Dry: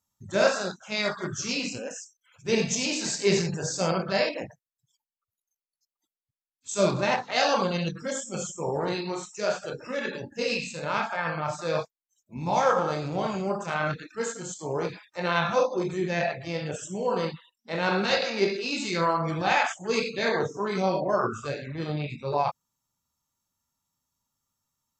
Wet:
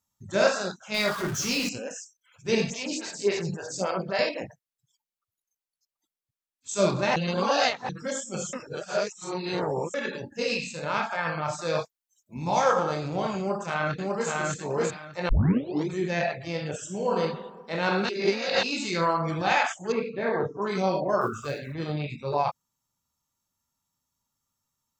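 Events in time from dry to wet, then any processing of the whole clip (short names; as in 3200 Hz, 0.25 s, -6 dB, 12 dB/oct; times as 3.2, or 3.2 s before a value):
0.94–1.69 zero-crossing step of -31.5 dBFS
2.7–4.19 photocell phaser 3.6 Hz
7.16–7.89 reverse
8.53–9.94 reverse
11.11–12.84 high shelf 4700 Hz +5 dB
13.38–14.3 echo throw 0.6 s, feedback 20%, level -1.5 dB
15.29 tape start 0.59 s
16.8–17.2 reverb throw, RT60 1.4 s, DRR 4.5 dB
18.09–18.63 reverse
19.92–20.62 LPF 1500 Hz
21.21–21.75 block floating point 7-bit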